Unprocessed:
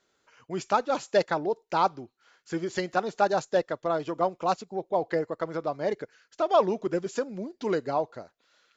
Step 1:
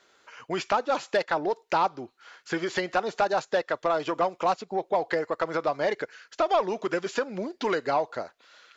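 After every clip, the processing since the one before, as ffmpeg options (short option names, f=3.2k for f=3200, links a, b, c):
-filter_complex "[0:a]acrossover=split=920|4800[a][b][c];[a]acompressor=threshold=-34dB:ratio=4[d];[b]acompressor=threshold=-39dB:ratio=4[e];[c]acompressor=threshold=-59dB:ratio=4[f];[d][e][f]amix=inputs=3:normalize=0,asplit=2[g][h];[h]highpass=f=720:p=1,volume=12dB,asoftclip=type=tanh:threshold=-17.5dB[i];[g][i]amix=inputs=2:normalize=0,lowpass=f=4k:p=1,volume=-6dB,volume=5.5dB"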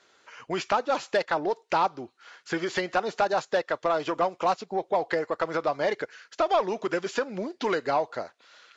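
-ar 22050 -c:a libvorbis -b:a 48k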